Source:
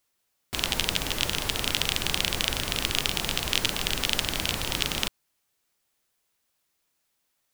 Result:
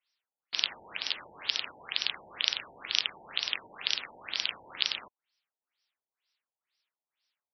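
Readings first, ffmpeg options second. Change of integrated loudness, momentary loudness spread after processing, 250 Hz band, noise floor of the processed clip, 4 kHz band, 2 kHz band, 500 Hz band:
-5.5 dB, 5 LU, -21.5 dB, under -85 dBFS, -4.5 dB, -6.0 dB, -15.5 dB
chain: -af "aderivative,afftfilt=real='re*lt(b*sr/1024,930*pow(6000/930,0.5+0.5*sin(2*PI*2.1*pts/sr)))':imag='im*lt(b*sr/1024,930*pow(6000/930,0.5+0.5*sin(2*PI*2.1*pts/sr)))':win_size=1024:overlap=0.75,volume=2.24"

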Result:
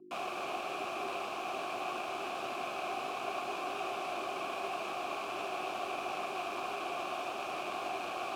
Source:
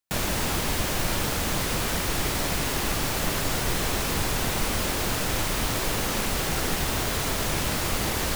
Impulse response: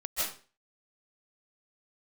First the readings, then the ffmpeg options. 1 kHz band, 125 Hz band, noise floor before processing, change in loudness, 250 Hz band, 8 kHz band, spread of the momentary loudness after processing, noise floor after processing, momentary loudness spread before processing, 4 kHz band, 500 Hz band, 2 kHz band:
-4.0 dB, -31.0 dB, -28 dBFS, -12.0 dB, -15.5 dB, -24.0 dB, 1 LU, -40 dBFS, 0 LU, -15.0 dB, -7.0 dB, -11.0 dB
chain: -filter_complex "[0:a]lowpass=f=3100:p=1,asplit=2[s0][s1];[s1]adynamicsmooth=sensitivity=7:basefreq=710,volume=0.891[s2];[s0][s2]amix=inputs=2:normalize=0,crystalizer=i=9:c=0,aeval=exprs='val(0)+0.0447*(sin(2*PI*50*n/s)+sin(2*PI*2*50*n/s)/2+sin(2*PI*3*50*n/s)/3+sin(2*PI*4*50*n/s)/4+sin(2*PI*5*50*n/s)/5)':c=same,afreqshift=-410,asplit=3[s3][s4][s5];[s3]bandpass=f=730:t=q:w=8,volume=1[s6];[s4]bandpass=f=1090:t=q:w=8,volume=0.501[s7];[s5]bandpass=f=2440:t=q:w=8,volume=0.355[s8];[s6][s7][s8]amix=inputs=3:normalize=0,volume=0.501"

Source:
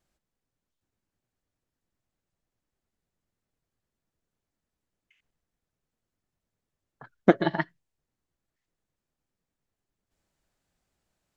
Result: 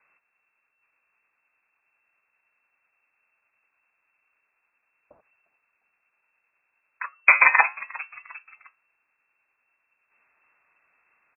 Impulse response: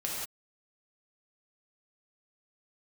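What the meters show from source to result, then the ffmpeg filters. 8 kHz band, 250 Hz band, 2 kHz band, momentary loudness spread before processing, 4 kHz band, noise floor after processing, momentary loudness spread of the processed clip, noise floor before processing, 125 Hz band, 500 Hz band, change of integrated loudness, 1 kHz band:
no reading, under -25 dB, +17.5 dB, 11 LU, under -20 dB, -76 dBFS, 21 LU, under -85 dBFS, under -30 dB, -12.5 dB, +9.0 dB, +9.0 dB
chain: -filter_complex "[0:a]equalizer=f=1300:t=o:w=1.3:g=8.5,flanger=delay=1.7:depth=9.9:regen=-82:speed=0.18:shape=triangular,asplit=4[s0][s1][s2][s3];[s1]adelay=353,afreqshift=-94,volume=0.0668[s4];[s2]adelay=706,afreqshift=-188,volume=0.0295[s5];[s3]adelay=1059,afreqshift=-282,volume=0.0129[s6];[s0][s4][s5][s6]amix=inputs=4:normalize=0,lowpass=f=2300:t=q:w=0.5098,lowpass=f=2300:t=q:w=0.6013,lowpass=f=2300:t=q:w=0.9,lowpass=f=2300:t=q:w=2.563,afreqshift=-2700,alimiter=level_in=6.31:limit=0.891:release=50:level=0:latency=1,volume=0.891"

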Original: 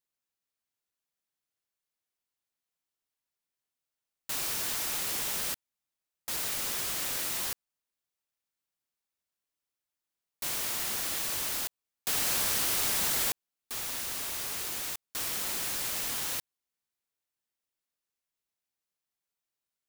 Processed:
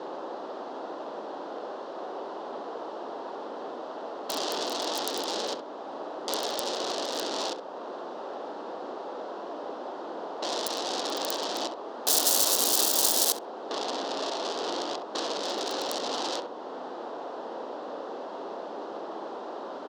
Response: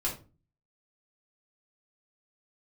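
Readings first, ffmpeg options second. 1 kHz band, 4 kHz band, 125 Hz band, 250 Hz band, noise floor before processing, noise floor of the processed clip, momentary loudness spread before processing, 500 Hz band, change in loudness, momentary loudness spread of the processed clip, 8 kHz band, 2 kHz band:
+11.5 dB, +5.5 dB, no reading, +11.5 dB, under -85 dBFS, -40 dBFS, 10 LU, +16.5 dB, -0.5 dB, 16 LU, +2.5 dB, -2.0 dB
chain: -filter_complex "[0:a]aeval=exprs='val(0)+0.5*0.0119*sgn(val(0))':c=same,acrossover=split=840[s0][s1];[s0]acontrast=70[s2];[s1]acrusher=bits=2:mix=0:aa=0.5[s3];[s2][s3]amix=inputs=2:normalize=0,asplit=2[s4][s5];[s5]highpass=f=720:p=1,volume=50.1,asoftclip=type=tanh:threshold=0.168[s6];[s4][s6]amix=inputs=2:normalize=0,lowpass=f=5400:p=1,volume=0.501,highpass=f=260:w=0.5412,highpass=f=260:w=1.3066,asplit=2[s7][s8];[s8]adelay=66,lowpass=f=960:p=1,volume=0.668,asplit=2[s9][s10];[s10]adelay=66,lowpass=f=960:p=1,volume=0.22,asplit=2[s11][s12];[s12]adelay=66,lowpass=f=960:p=1,volume=0.22[s13];[s9][s11][s13]amix=inputs=3:normalize=0[s14];[s7][s14]amix=inputs=2:normalize=0,alimiter=limit=0.112:level=0:latency=1:release=392,aexciter=amount=15.1:drive=8.9:freq=3600,volume=0.562"

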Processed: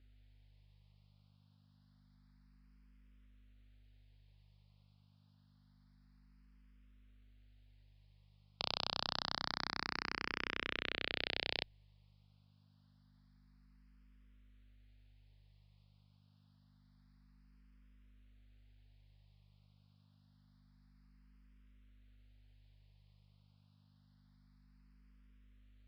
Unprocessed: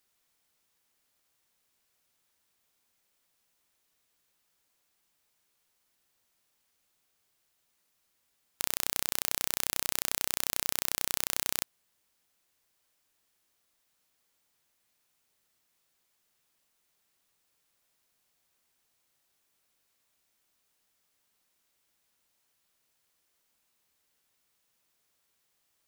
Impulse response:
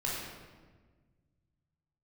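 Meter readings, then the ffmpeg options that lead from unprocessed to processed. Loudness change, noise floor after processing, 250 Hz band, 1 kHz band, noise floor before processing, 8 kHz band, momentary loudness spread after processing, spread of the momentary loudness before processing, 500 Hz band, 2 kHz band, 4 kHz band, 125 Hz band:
-9.0 dB, -69 dBFS, -0.5 dB, -1.5 dB, -76 dBFS, -30.5 dB, 3 LU, 3 LU, -2.0 dB, -1.0 dB, -3.0 dB, 0.0 dB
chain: -filter_complex "[0:a]aresample=11025,aresample=44100,aeval=exprs='val(0)+0.000708*(sin(2*PI*50*n/s)+sin(2*PI*2*50*n/s)/2+sin(2*PI*3*50*n/s)/3+sin(2*PI*4*50*n/s)/4+sin(2*PI*5*50*n/s)/5)':c=same,asplit=2[s0][s1];[s1]afreqshift=0.27[s2];[s0][s2]amix=inputs=2:normalize=1,volume=1.19"

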